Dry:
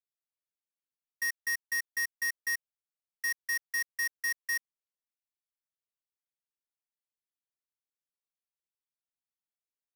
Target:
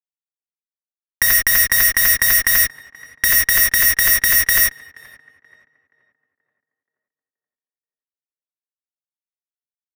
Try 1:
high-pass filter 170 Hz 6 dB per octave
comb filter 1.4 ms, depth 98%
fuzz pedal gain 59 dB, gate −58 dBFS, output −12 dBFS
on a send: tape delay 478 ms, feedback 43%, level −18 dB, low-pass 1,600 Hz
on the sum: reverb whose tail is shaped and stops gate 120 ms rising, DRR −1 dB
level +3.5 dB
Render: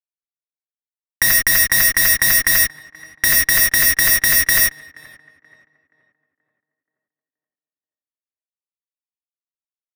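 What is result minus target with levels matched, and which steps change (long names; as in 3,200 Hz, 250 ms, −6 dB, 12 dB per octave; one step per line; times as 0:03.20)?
125 Hz band +3.0 dB
change: high-pass filter 56 Hz 6 dB per octave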